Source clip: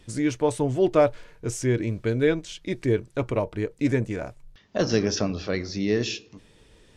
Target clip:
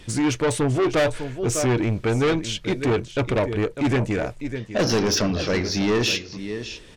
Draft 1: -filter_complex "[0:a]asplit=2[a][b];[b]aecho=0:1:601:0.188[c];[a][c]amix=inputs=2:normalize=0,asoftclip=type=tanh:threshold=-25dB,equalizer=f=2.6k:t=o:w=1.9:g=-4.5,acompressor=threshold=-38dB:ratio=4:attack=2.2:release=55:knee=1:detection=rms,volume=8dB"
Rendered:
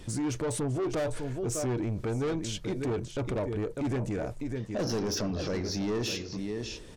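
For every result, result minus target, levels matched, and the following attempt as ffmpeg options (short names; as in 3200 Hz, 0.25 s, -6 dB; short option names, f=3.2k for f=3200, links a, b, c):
compressor: peak gain reduction +9.5 dB; 2000 Hz band -5.0 dB
-filter_complex "[0:a]asplit=2[a][b];[b]aecho=0:1:601:0.188[c];[a][c]amix=inputs=2:normalize=0,asoftclip=type=tanh:threshold=-25dB,equalizer=f=2.6k:t=o:w=1.9:g=-4.5,volume=8dB"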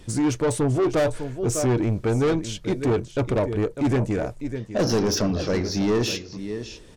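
2000 Hz band -5.5 dB
-filter_complex "[0:a]asplit=2[a][b];[b]aecho=0:1:601:0.188[c];[a][c]amix=inputs=2:normalize=0,asoftclip=type=tanh:threshold=-25dB,equalizer=f=2.6k:t=o:w=1.9:g=3.5,volume=8dB"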